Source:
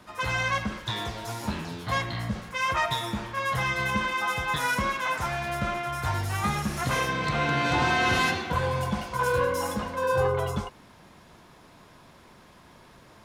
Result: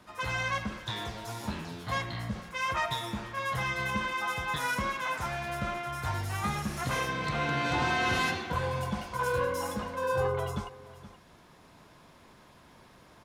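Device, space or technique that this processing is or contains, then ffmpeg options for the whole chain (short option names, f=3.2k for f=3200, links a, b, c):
ducked delay: -filter_complex "[0:a]asplit=3[a][b][c];[b]adelay=473,volume=-5dB[d];[c]apad=whole_len=605053[e];[d][e]sidechaincompress=threshold=-41dB:ratio=8:attack=7.8:release=890[f];[a][f]amix=inputs=2:normalize=0,volume=-4.5dB"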